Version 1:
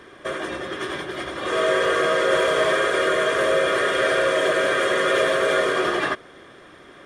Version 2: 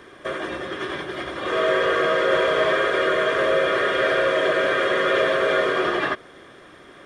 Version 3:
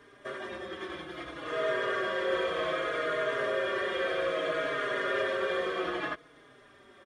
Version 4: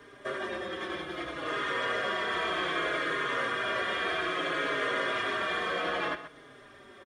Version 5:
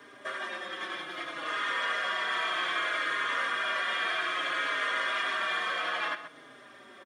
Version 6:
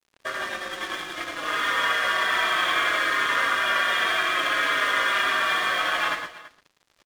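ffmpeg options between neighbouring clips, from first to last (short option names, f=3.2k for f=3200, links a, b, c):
-filter_complex "[0:a]acrossover=split=4800[a][b];[b]acompressor=threshold=-54dB:ratio=4:attack=1:release=60[c];[a][c]amix=inputs=2:normalize=0"
-filter_complex "[0:a]asplit=2[a][b];[b]adelay=4.4,afreqshift=-0.62[c];[a][c]amix=inputs=2:normalize=1,volume=-7.5dB"
-filter_complex "[0:a]afftfilt=real='re*lt(hypot(re,im),0.126)':imag='im*lt(hypot(re,im),0.126)':win_size=1024:overlap=0.75,acrossover=split=200|3500[a][b][c];[a]alimiter=level_in=28dB:limit=-24dB:level=0:latency=1,volume=-28dB[d];[d][b][c]amix=inputs=3:normalize=0,asplit=2[e][f];[f]adelay=128.3,volume=-12dB,highshelf=f=4k:g=-2.89[g];[e][g]amix=inputs=2:normalize=0,volume=4dB"
-filter_complex "[0:a]highpass=200,acrossover=split=800[a][b];[a]acompressor=threshold=-45dB:ratio=6[c];[c][b]amix=inputs=2:normalize=0,equalizer=f=420:t=o:w=0.45:g=-6.5,volume=2dB"
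-filter_complex "[0:a]aeval=exprs='sgn(val(0))*max(abs(val(0))-0.00596,0)':c=same,asplit=2[a][b];[b]aecho=0:1:110|140|333:0.422|0.112|0.126[c];[a][c]amix=inputs=2:normalize=0,volume=8dB"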